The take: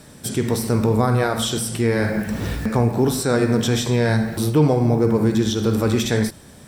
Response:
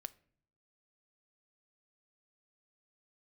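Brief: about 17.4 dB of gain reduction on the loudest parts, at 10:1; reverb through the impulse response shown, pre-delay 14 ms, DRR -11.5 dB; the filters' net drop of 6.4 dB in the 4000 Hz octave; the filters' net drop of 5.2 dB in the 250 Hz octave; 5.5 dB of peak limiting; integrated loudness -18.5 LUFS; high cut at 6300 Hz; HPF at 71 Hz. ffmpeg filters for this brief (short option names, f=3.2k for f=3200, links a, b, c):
-filter_complex "[0:a]highpass=71,lowpass=6.3k,equalizer=f=250:t=o:g=-6.5,equalizer=f=4k:t=o:g=-7.5,acompressor=threshold=-33dB:ratio=10,alimiter=level_in=3.5dB:limit=-24dB:level=0:latency=1,volume=-3.5dB,asplit=2[a][b];[1:a]atrim=start_sample=2205,adelay=14[c];[b][c]afir=irnorm=-1:irlink=0,volume=16dB[d];[a][d]amix=inputs=2:normalize=0,volume=7.5dB"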